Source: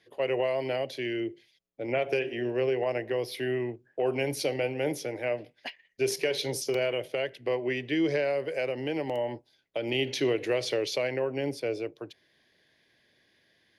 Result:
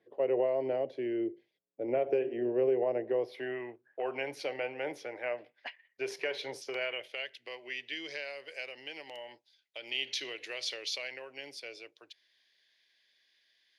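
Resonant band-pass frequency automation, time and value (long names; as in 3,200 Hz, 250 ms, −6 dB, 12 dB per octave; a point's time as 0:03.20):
resonant band-pass, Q 0.92
0:03.06 430 Hz
0:03.61 1,300 Hz
0:06.59 1,300 Hz
0:07.35 4,100 Hz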